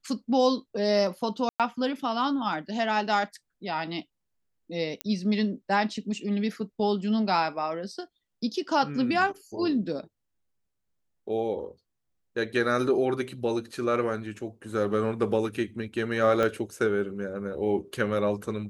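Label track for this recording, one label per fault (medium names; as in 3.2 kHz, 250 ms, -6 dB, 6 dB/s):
1.490000	1.600000	dropout 107 ms
5.010000	5.010000	pop -14 dBFS
16.430000	16.430000	pop -14 dBFS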